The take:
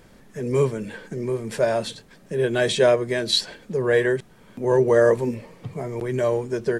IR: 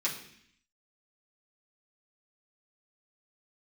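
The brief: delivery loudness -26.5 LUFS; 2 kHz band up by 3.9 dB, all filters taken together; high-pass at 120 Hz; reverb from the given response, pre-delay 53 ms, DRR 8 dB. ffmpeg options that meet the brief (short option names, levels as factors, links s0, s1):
-filter_complex "[0:a]highpass=120,equalizer=f=2000:t=o:g=5,asplit=2[s0][s1];[1:a]atrim=start_sample=2205,adelay=53[s2];[s1][s2]afir=irnorm=-1:irlink=0,volume=0.2[s3];[s0][s3]amix=inputs=2:normalize=0,volume=0.562"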